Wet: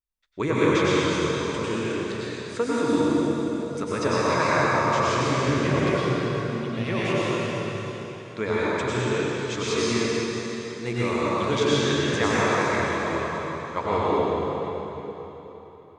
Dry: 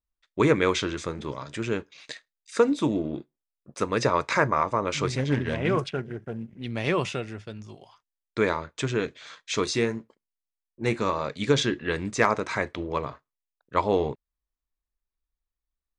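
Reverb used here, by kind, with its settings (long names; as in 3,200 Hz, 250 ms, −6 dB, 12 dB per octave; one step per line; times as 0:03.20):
dense smooth reverb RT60 3.8 s, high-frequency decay 0.9×, pre-delay 85 ms, DRR −9 dB
level −6 dB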